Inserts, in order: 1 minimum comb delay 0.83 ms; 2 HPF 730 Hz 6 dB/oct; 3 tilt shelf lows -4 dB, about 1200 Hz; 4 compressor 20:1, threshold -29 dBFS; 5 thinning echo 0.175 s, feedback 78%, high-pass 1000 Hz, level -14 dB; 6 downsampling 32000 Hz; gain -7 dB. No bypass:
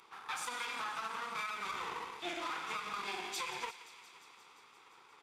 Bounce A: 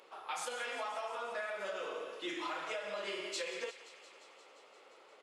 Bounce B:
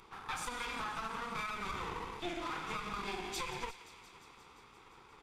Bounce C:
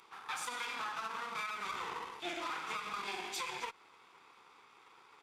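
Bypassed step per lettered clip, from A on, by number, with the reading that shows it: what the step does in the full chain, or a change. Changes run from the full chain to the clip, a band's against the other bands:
1, 500 Hz band +10.0 dB; 2, 125 Hz band +13.0 dB; 5, momentary loudness spread change -16 LU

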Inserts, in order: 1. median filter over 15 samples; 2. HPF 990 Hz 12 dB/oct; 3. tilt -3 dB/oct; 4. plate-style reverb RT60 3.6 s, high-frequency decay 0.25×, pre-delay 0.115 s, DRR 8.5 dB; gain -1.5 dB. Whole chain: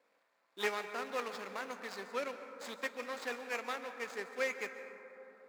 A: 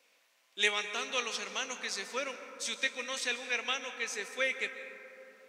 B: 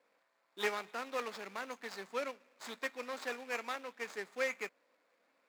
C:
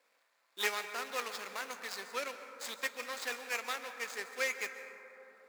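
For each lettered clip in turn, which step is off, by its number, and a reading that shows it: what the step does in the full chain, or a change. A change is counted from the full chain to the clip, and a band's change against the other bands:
1, 8 kHz band +12.5 dB; 4, momentary loudness spread change -2 LU; 3, 250 Hz band -9.0 dB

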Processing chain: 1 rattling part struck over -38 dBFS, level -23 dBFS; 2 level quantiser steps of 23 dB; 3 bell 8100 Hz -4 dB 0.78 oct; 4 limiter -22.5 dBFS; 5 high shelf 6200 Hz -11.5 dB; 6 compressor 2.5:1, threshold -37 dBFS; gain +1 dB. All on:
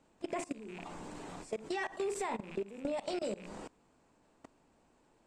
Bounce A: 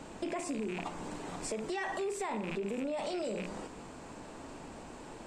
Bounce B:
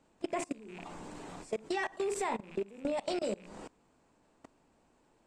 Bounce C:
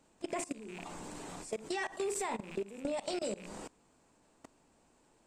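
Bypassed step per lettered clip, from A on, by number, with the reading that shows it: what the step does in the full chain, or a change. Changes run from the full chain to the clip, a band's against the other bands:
2, crest factor change -5.0 dB; 4, mean gain reduction 2.5 dB; 5, 8 kHz band +6.5 dB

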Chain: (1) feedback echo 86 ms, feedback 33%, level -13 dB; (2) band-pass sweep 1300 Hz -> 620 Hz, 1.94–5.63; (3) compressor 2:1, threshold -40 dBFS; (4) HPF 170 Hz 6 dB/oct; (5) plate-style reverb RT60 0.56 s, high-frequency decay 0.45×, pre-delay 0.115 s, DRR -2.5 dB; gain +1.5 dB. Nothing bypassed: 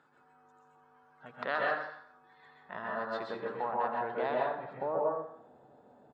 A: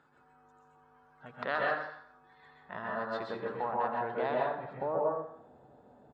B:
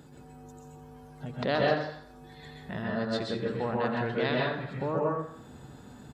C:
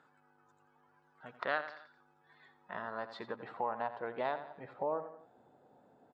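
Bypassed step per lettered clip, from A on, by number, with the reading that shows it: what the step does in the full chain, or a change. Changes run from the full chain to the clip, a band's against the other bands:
4, 125 Hz band +4.0 dB; 2, 125 Hz band +14.5 dB; 5, crest factor change +4.5 dB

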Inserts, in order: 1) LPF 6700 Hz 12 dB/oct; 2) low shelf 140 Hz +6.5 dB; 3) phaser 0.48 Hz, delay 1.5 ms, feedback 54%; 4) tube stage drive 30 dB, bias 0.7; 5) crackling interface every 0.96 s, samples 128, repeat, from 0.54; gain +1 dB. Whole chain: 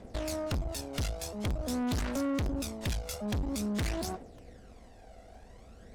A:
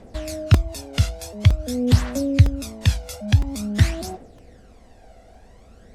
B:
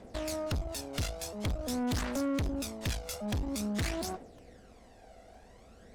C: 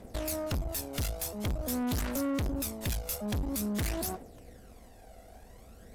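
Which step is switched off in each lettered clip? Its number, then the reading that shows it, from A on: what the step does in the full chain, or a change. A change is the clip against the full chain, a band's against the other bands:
4, crest factor change +9.5 dB; 2, momentary loudness spread change -16 LU; 1, 8 kHz band +4.0 dB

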